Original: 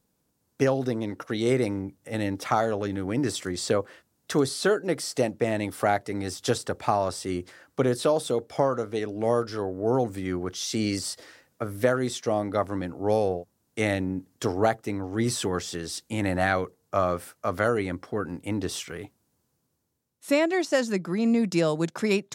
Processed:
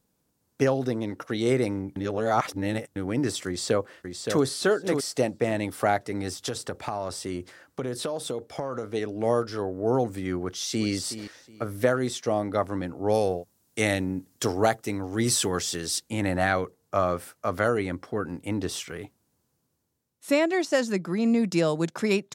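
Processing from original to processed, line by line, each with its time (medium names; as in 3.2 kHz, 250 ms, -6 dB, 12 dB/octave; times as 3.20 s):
1.96–2.96 s: reverse
3.47–4.43 s: echo throw 570 ms, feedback 15%, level -6 dB
6.29–8.93 s: compression, threshold -26 dBFS
10.43–10.90 s: echo throw 370 ms, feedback 25%, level -12 dB
13.14–16.00 s: treble shelf 3.4 kHz +8.5 dB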